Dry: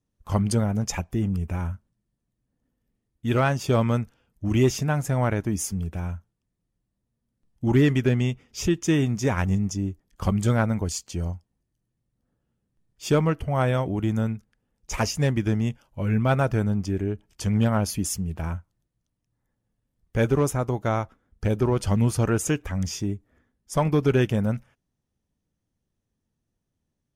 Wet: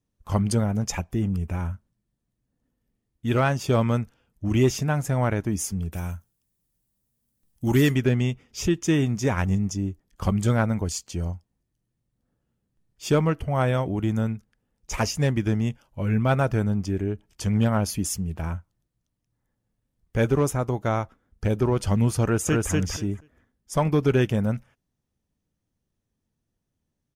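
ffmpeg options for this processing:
-filter_complex "[0:a]asettb=1/sr,asplit=3[s0][s1][s2];[s0]atrim=end=5.924[s3];[s1]atrim=start=5.92:end=7.95,asetpts=PTS-STARTPTS,afade=t=in:d=0.004:c=qsin,afade=t=out:st=2.026:d=0.004:c=qsin,aemphasis=mode=production:type=75fm[s4];[s2]atrim=start=7.946[s5];[s3][s4]acrossfade=d=0.004:c1=hsin:c2=qsin[s6];[s6][s5]acrossfade=d=0.004:c1=qsin:c2=hsin,asplit=2[s7][s8];[s8]afade=t=in:st=22.24:d=0.01,afade=t=out:st=22.72:d=0.01,aecho=0:1:240|480|720:0.841395|0.126209|0.0189314[s9];[s7][s9]amix=inputs=2:normalize=0"

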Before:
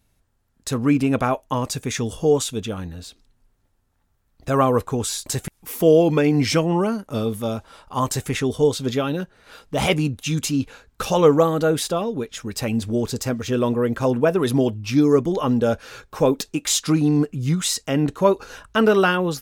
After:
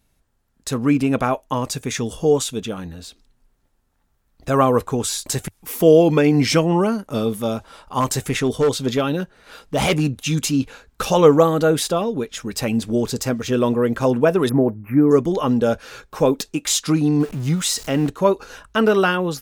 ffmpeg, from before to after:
-filter_complex "[0:a]asettb=1/sr,asplit=3[s0][s1][s2];[s0]atrim=end=8.004[s3];[s1]atrim=start=8:end=10.47,asetpts=PTS-STARTPTS,afade=t=in:d=0.004:c=qsin,afade=t=out:st=2.466:d=0.004:c=qsin,asoftclip=type=hard:threshold=0.178[s4];[s2]atrim=start=10.466[s5];[s3][s4]acrossfade=d=0.004:c1=hsin:c2=qsin[s6];[s6][s5]acrossfade=d=0.004:c1=qsin:c2=hsin,asettb=1/sr,asplit=3[s7][s8][s9];[s7]atrim=end=14.494[s10];[s8]atrim=start=14.49:end=15.11,asetpts=PTS-STARTPTS,afade=t=in:d=0.004:c=qsin,afade=t=out:st=0.616:d=0.004:c=qsin,asuperstop=centerf=5200:order=12:qfactor=0.57[s11];[s9]atrim=start=15.106[s12];[s10][s11]acrossfade=d=0.004:c1=hsin:c2=qsin[s13];[s13][s12]acrossfade=d=0.004:c1=qsin:c2=hsin,asettb=1/sr,asplit=3[s14][s15][s16];[s14]atrim=end=17.204[s17];[s15]atrim=start=17.2:end=18.1,asetpts=PTS-STARTPTS,afade=t=in:d=0.004:c=qsin,afade=t=out:st=0.896:d=0.004:c=qsin,aeval=exprs='val(0)+0.5*0.0224*sgn(val(0))':c=same[s18];[s16]atrim=start=18.096[s19];[s17][s18]acrossfade=d=0.004:c1=hsin:c2=qsin[s20];[s20][s19]acrossfade=d=0.004:c1=qsin:c2=hsin,equalizer=f=98:t=o:w=0.23:g=-13,dynaudnorm=f=730:g=13:m=1.58,volume=1.12"

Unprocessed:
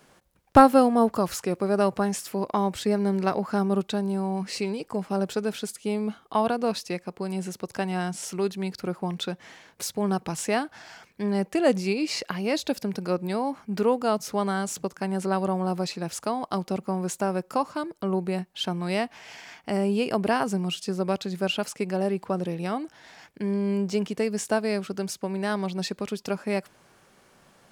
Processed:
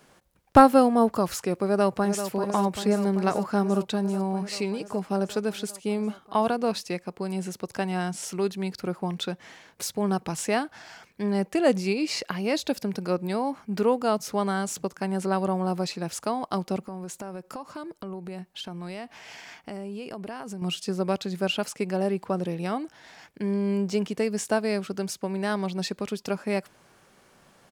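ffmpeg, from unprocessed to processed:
-filter_complex "[0:a]asplit=2[s0][s1];[s1]afade=t=in:st=1.65:d=0.01,afade=t=out:st=2.26:d=0.01,aecho=0:1:390|780|1170|1560|1950|2340|2730|3120|3510|3900|4290|4680:0.354813|0.283851|0.227081|0.181664|0.145332|0.116265|0.0930122|0.0744098|0.0595278|0.0476222|0.0380978|0.0304782[s2];[s0][s2]amix=inputs=2:normalize=0,asettb=1/sr,asplit=3[s3][s4][s5];[s3]atrim=end=16.854[s6];[s4]atrim=start=16.85:end=20.62,asetpts=PTS-STARTPTS,afade=t=in:d=0.004:c=qsin,afade=t=out:st=3.766:d=0.004:c=qsin,acompressor=threshold=0.02:ratio=5:attack=3.2:release=140:knee=1:detection=peak[s7];[s5]atrim=start=20.616[s8];[s6][s7]acrossfade=d=0.004:c1=hsin:c2=qsin[s9];[s9][s8]acrossfade=d=0.004:c1=qsin:c2=hsin"

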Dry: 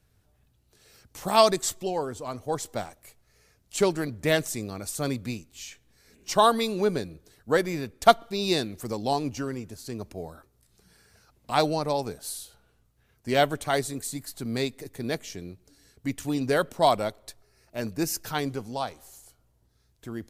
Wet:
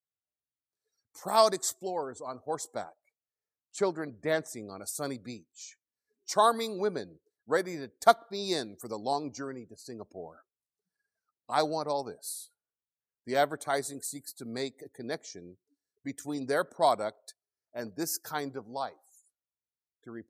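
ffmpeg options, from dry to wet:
-filter_complex "[0:a]asettb=1/sr,asplit=3[s0][s1][s2];[s0]atrim=end=2.844[s3];[s1]atrim=start=2.84:end=4.69,asetpts=PTS-STARTPTS,afade=t=in:d=0.004:c=qsin,afade=t=out:st=1.846:d=0.004:c=qsin,highshelf=f=4400:g=-8.5[s4];[s2]atrim=start=4.686[s5];[s3][s4]acrossfade=d=0.004:c1=hsin:c2=qsin[s6];[s6][s5]acrossfade=d=0.004:c1=qsin:c2=hsin,highpass=f=440:p=1,afftdn=nr=29:nf=-48,equalizer=f=2800:w=2.7:g=-15,volume=0.794"

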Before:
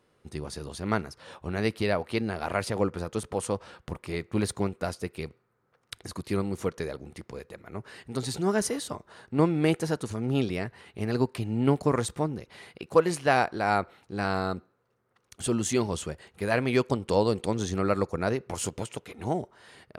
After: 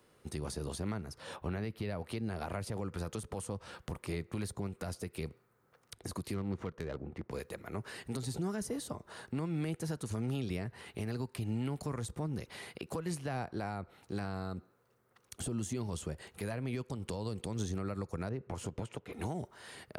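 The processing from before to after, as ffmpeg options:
-filter_complex "[0:a]asettb=1/sr,asplit=3[s0][s1][s2];[s0]atrim=end=1.364[s3];[s1]atrim=start=1.36:end=1.9,asetpts=PTS-STARTPTS,afade=t=in:d=0.004:c=qsin,afade=t=out:st=0.536:d=0.004:c=qsin,equalizer=f=8000:t=o:w=1.3:g=-11.5[s4];[s2]atrim=start=1.896[s5];[s3][s4]acrossfade=d=0.004:c1=hsin:c2=qsin[s6];[s6][s5]acrossfade=d=0.004:c1=qsin:c2=hsin,asettb=1/sr,asplit=3[s7][s8][s9];[s7]atrim=end=6.344[s10];[s8]atrim=start=6.34:end=7.31,asetpts=PTS-STARTPTS,afade=t=in:d=0.004:c=qsin,afade=t=out:st=0.966:d=0.004:c=qsin,adynamicsmooth=sensitivity=4.5:basefreq=1300[s11];[s9]atrim=start=7.306[s12];[s10][s11]acrossfade=d=0.004:c1=hsin:c2=qsin[s13];[s13][s12]acrossfade=d=0.004:c1=qsin:c2=hsin,asettb=1/sr,asplit=3[s14][s15][s16];[s14]atrim=end=18.294[s17];[s15]atrim=start=18.29:end=19.13,asetpts=PTS-STARTPTS,afade=t=in:d=0.004:c=qsin,afade=t=out:st=0.836:d=0.004:c=qsin,lowpass=f=1100:p=1[s18];[s16]atrim=start=19.126[s19];[s17][s18]acrossfade=d=0.004:c1=hsin:c2=qsin[s20];[s20][s19]acrossfade=d=0.004:c1=qsin:c2=hsin,highshelf=f=8400:g=9.5,acrossover=split=190|970[s21][s22][s23];[s21]acompressor=threshold=0.0224:ratio=4[s24];[s22]acompressor=threshold=0.0126:ratio=4[s25];[s23]acompressor=threshold=0.00562:ratio=4[s26];[s24][s25][s26]amix=inputs=3:normalize=0,alimiter=level_in=1.68:limit=0.0631:level=0:latency=1:release=129,volume=0.596,volume=1.12"

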